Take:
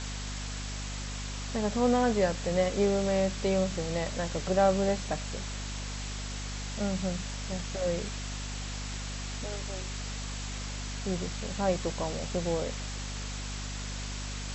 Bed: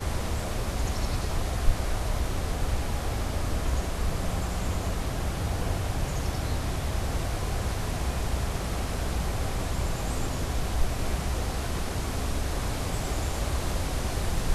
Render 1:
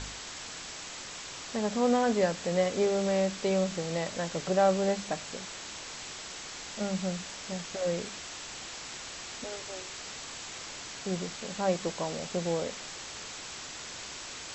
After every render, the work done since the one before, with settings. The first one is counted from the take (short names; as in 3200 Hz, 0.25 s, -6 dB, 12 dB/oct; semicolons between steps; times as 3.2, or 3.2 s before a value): de-hum 50 Hz, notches 5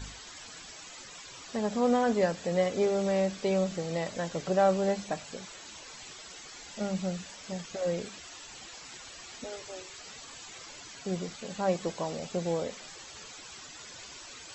denoiser 12 dB, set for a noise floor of -43 dBFS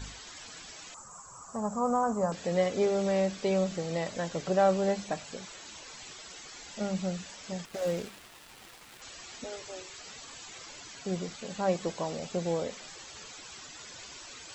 0.94–2.32 EQ curve 200 Hz 0 dB, 310 Hz -11 dB, 1200 Hz +7 dB, 1900 Hz -18 dB, 3700 Hz -25 dB, 7600 Hz +4 dB; 7.65–9.02 switching dead time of 0.099 ms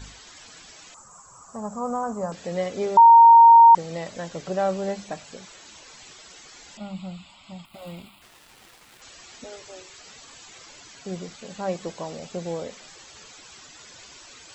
2.97–3.75 bleep 926 Hz -7 dBFS; 6.77–8.22 fixed phaser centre 1700 Hz, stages 6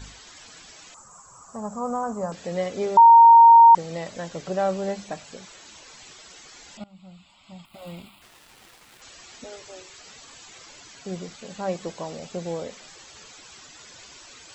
6.84–7.94 fade in, from -21 dB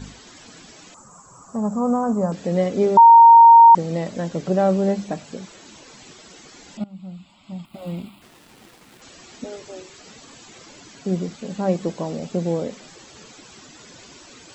bell 230 Hz +12 dB 2.3 oct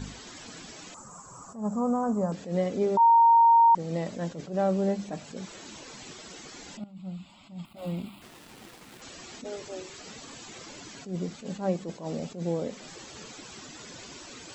compressor 1.5:1, threshold -35 dBFS, peak gain reduction 10 dB; attack slew limiter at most 150 dB/s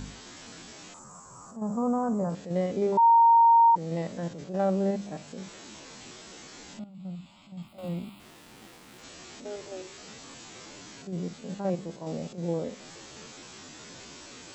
stepped spectrum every 50 ms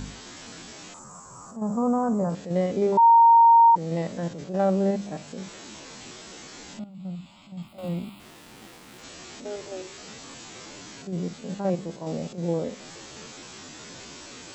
gain +3.5 dB